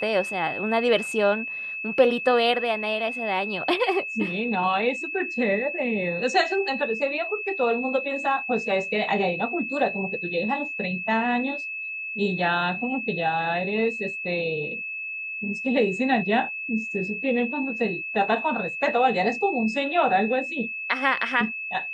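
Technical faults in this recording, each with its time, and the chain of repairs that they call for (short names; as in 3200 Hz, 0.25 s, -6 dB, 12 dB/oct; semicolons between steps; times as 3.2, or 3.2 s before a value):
tone 2600 Hz -30 dBFS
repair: notch 2600 Hz, Q 30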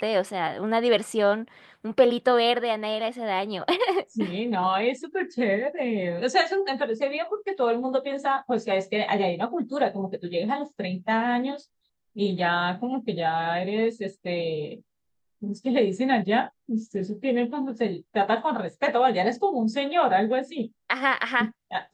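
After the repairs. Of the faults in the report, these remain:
none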